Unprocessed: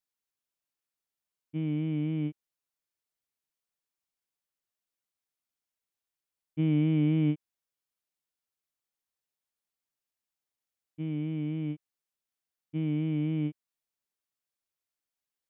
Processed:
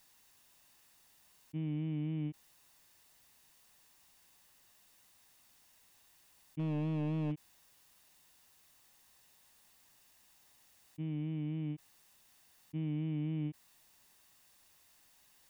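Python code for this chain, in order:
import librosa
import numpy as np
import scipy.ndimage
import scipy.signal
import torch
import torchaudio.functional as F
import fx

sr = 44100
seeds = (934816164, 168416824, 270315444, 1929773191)

y = x + 0.32 * np.pad(x, (int(1.1 * sr / 1000.0), 0))[:len(x)]
y = 10.0 ** (-21.0 / 20.0) * (np.abs((y / 10.0 ** (-21.0 / 20.0) + 3.0) % 4.0 - 2.0) - 1.0)
y = fx.env_flatten(y, sr, amount_pct=50)
y = y * librosa.db_to_amplitude(-8.5)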